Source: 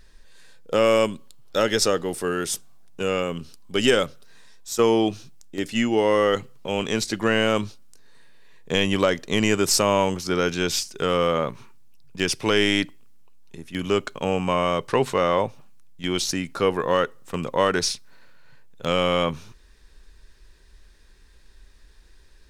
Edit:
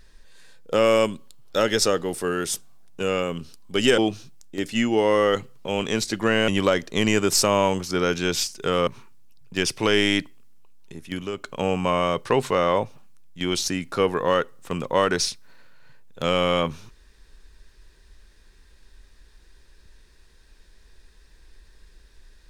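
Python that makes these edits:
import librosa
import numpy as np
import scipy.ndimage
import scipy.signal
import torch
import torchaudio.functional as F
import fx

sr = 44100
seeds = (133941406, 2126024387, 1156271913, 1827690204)

y = fx.edit(x, sr, fx.cut(start_s=3.98, length_s=1.0),
    fx.cut(start_s=7.48, length_s=1.36),
    fx.cut(start_s=11.23, length_s=0.27),
    fx.fade_down_up(start_s=13.71, length_s=0.48, db=-10.5, fade_s=0.24), tone=tone)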